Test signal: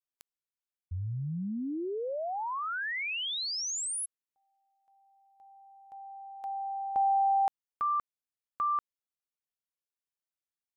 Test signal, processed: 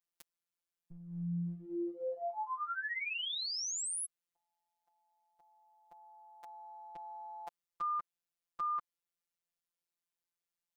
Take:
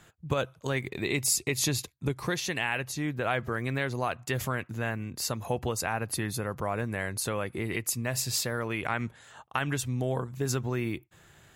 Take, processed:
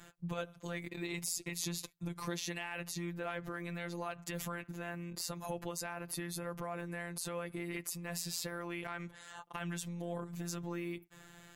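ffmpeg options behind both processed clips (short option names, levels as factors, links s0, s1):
-af "acompressor=threshold=0.0126:ratio=2.5:attack=0.42:release=121:knee=1:detection=peak,afftfilt=real='hypot(re,im)*cos(PI*b)':imag='0':win_size=1024:overlap=0.75,volume=1.5"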